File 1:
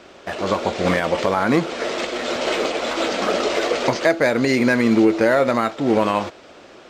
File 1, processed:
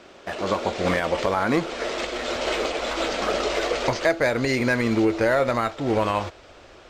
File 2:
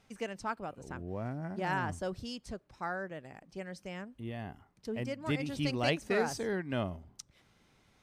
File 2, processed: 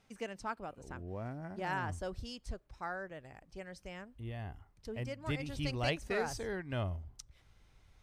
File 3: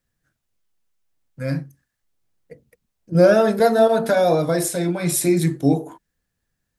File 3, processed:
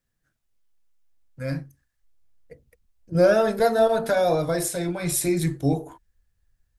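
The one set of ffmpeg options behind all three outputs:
-af "asubboost=boost=9:cutoff=69,volume=-3dB"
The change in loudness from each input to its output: -4.0, -3.5, -4.0 LU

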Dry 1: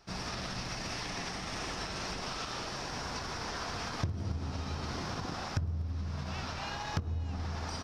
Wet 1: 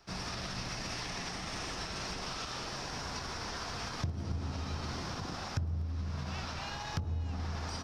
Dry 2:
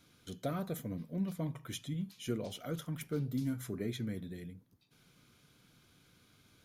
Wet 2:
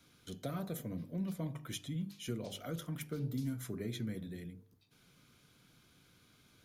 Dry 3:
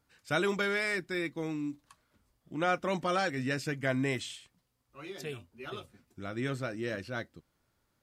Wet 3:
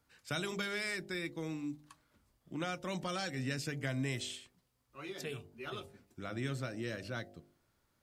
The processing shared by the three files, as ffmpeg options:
-filter_complex "[0:a]bandreject=f=49.76:t=h:w=4,bandreject=f=99.52:t=h:w=4,bandreject=f=149.28:t=h:w=4,bandreject=f=199.04:t=h:w=4,bandreject=f=248.8:t=h:w=4,bandreject=f=298.56:t=h:w=4,bandreject=f=348.32:t=h:w=4,bandreject=f=398.08:t=h:w=4,bandreject=f=447.84:t=h:w=4,bandreject=f=497.6:t=h:w=4,bandreject=f=547.36:t=h:w=4,bandreject=f=597.12:t=h:w=4,bandreject=f=646.88:t=h:w=4,bandreject=f=696.64:t=h:w=4,bandreject=f=746.4:t=h:w=4,bandreject=f=796.16:t=h:w=4,bandreject=f=845.92:t=h:w=4,bandreject=f=895.68:t=h:w=4,acrossover=split=180|3000[a][b][c];[b]acompressor=threshold=-39dB:ratio=4[d];[a][d][c]amix=inputs=3:normalize=0"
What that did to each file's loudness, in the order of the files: -1.0, -2.0, -6.0 LU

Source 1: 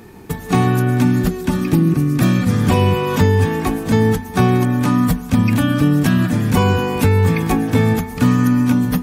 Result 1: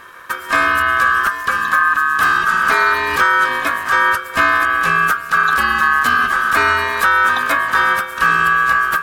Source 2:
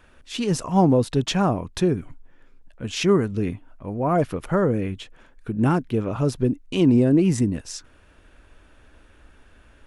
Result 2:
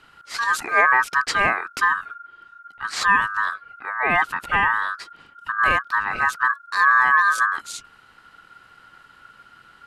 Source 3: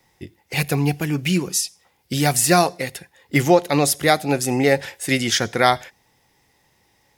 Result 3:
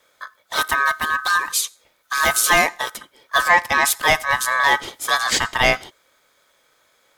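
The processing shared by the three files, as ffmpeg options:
-af "acontrast=39,aeval=exprs='val(0)*sin(2*PI*1400*n/s)':c=same,volume=-1.5dB"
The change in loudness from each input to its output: +2.0, +2.5, +1.0 LU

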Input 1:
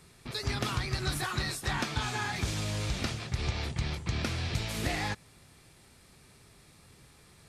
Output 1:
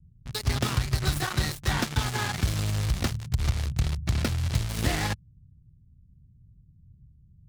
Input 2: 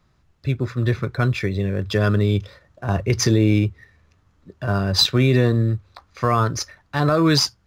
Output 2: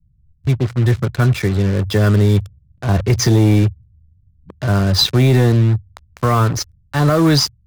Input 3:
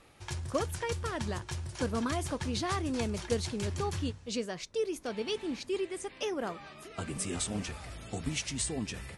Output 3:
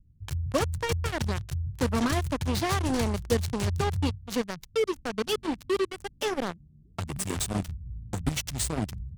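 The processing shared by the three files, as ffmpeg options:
-filter_complex "[0:a]lowshelf=f=290:g=5,bandreject=f=2.5k:w=15,acrossover=split=170[a][b];[b]acrusher=bits=4:mix=0:aa=0.5[c];[a][c]amix=inputs=2:normalize=0,asoftclip=type=tanh:threshold=-9dB,volume=3.5dB"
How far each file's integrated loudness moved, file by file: +5.0, +4.5, +5.0 LU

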